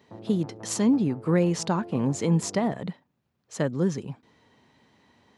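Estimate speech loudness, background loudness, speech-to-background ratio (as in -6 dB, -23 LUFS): -26.0 LUFS, -44.0 LUFS, 18.0 dB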